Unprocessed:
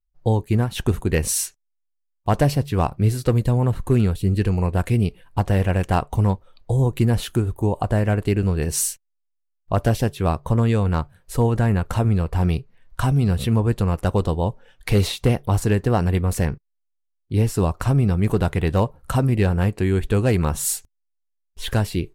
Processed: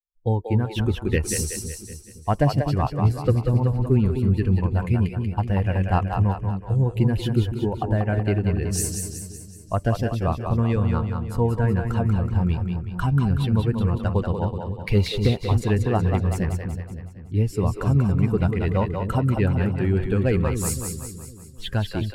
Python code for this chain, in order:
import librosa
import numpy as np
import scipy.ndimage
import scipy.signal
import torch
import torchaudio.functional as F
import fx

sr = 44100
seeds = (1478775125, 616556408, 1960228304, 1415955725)

p1 = fx.bin_expand(x, sr, power=1.5)
p2 = fx.high_shelf(p1, sr, hz=10000.0, db=-7.5)
y = p2 + fx.echo_split(p2, sr, split_hz=380.0, low_ms=256, high_ms=187, feedback_pct=52, wet_db=-5.0, dry=0)